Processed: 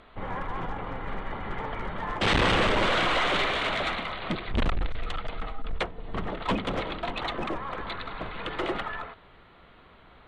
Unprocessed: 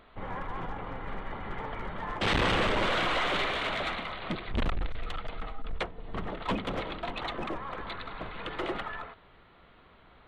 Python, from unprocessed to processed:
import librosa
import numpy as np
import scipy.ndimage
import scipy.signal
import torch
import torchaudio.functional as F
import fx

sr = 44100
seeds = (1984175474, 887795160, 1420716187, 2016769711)

y = scipy.signal.sosfilt(scipy.signal.cheby1(2, 1.0, 9800.0, 'lowpass', fs=sr, output='sos'), x)
y = y * 10.0 ** (4.5 / 20.0)